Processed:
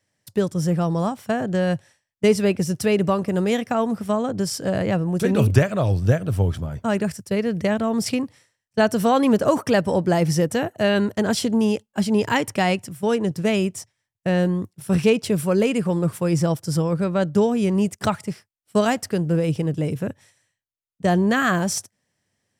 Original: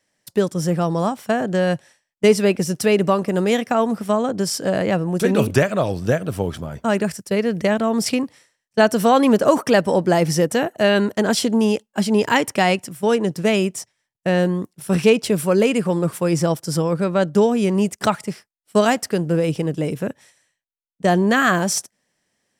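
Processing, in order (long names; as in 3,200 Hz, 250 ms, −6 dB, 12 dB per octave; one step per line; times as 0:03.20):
parametric band 98 Hz +14 dB 1 octave
level −4 dB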